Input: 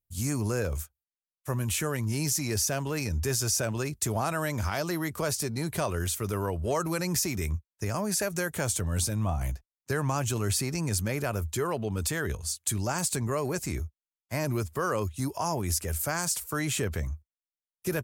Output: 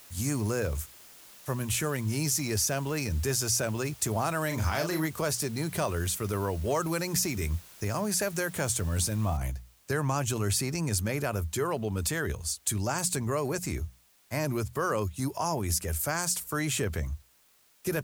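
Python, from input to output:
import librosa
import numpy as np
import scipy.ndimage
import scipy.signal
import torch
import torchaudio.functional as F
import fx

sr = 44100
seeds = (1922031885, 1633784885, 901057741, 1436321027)

y = fx.doubler(x, sr, ms=38.0, db=-5.0, at=(4.5, 5.05), fade=0.02)
y = fx.noise_floor_step(y, sr, seeds[0], at_s=9.37, before_db=-52, after_db=-64, tilt_db=0.0)
y = fx.hum_notches(y, sr, base_hz=60, count=3)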